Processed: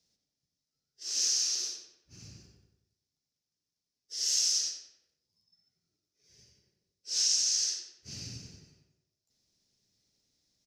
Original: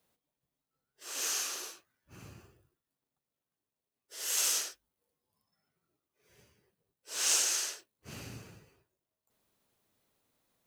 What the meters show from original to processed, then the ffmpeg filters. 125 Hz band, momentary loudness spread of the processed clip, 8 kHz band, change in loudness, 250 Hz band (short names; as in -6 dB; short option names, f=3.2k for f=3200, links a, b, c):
+1.5 dB, 19 LU, +2.5 dB, +3.0 dB, n/a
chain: -filter_complex "[0:a]firequalizer=gain_entry='entry(120,0);entry(510,-9);entry(1100,-16);entry(1900,-6);entry(3000,-4);entry(5300,15);entry(8100,-4);entry(12000,-13)':delay=0.05:min_phase=1,acompressor=threshold=-25dB:ratio=6,asplit=2[a][b];[b]adelay=91,lowpass=f=3.8k:p=1,volume=-5.5dB,asplit=2[c][d];[d]adelay=91,lowpass=f=3.8k:p=1,volume=0.5,asplit=2[e][f];[f]adelay=91,lowpass=f=3.8k:p=1,volume=0.5,asplit=2[g][h];[h]adelay=91,lowpass=f=3.8k:p=1,volume=0.5,asplit=2[i][j];[j]adelay=91,lowpass=f=3.8k:p=1,volume=0.5,asplit=2[k][l];[l]adelay=91,lowpass=f=3.8k:p=1,volume=0.5[m];[a][c][e][g][i][k][m]amix=inputs=7:normalize=0"